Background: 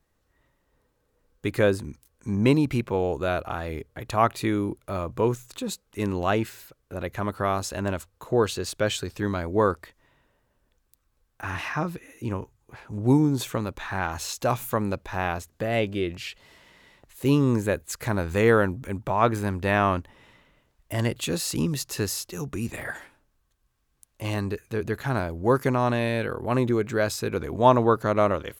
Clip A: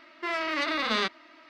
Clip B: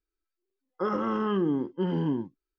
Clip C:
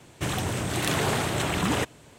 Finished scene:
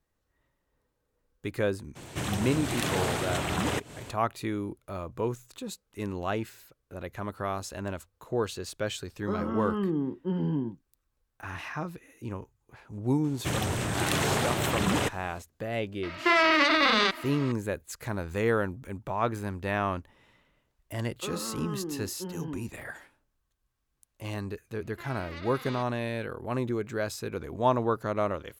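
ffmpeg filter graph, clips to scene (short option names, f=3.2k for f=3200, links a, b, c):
-filter_complex "[3:a]asplit=2[a][b];[2:a]asplit=2[c][d];[1:a]asplit=2[e][f];[0:a]volume=-7dB[g];[a]acompressor=mode=upward:threshold=-29dB:ratio=2.5:attack=3.2:release=140:knee=2.83:detection=peak[h];[c]lowshelf=f=220:g=11.5[i];[e]alimiter=level_in=25dB:limit=-1dB:release=50:level=0:latency=1[j];[h]atrim=end=2.18,asetpts=PTS-STARTPTS,volume=-4dB,afade=t=in:d=0.02,afade=t=out:st=2.16:d=0.02,adelay=1950[k];[i]atrim=end=2.58,asetpts=PTS-STARTPTS,volume=-7dB,afade=t=in:d=0.004:c=hsin,afade=t=out:st=2.576:d=0.004:c=hsin,adelay=8470[l];[b]atrim=end=2.18,asetpts=PTS-STARTPTS,volume=-1.5dB,afade=t=in:d=0.004:c=hsin,afade=t=out:st=2.176:d=0.004:c=hsin,adelay=13240[m];[j]atrim=end=1.49,asetpts=PTS-STARTPTS,volume=-13dB,afade=t=in:d=0.004:c=hsin,afade=t=out:st=1.486:d=0.004:c=hsin,adelay=16030[n];[d]atrim=end=2.58,asetpts=PTS-STARTPTS,volume=-10dB,afade=t=in:d=0.004:c=hsin,afade=t=out:st=2.576:d=0.004:c=hsin,adelay=20420[o];[f]atrim=end=1.49,asetpts=PTS-STARTPTS,volume=-15.5dB,afade=t=in:d=0.004:c=hsin,afade=t=out:st=1.486:d=0.004:c=hsin,adelay=24750[p];[g][k][l][m][n][o][p]amix=inputs=7:normalize=0"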